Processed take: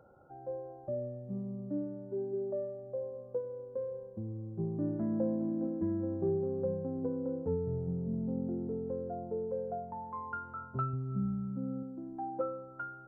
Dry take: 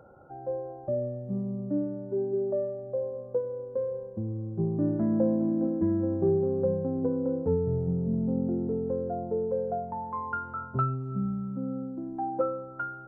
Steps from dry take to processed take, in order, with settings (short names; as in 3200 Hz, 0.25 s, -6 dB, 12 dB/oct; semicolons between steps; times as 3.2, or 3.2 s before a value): 10.93–11.83 low shelf 170 Hz +8 dB; gain -7 dB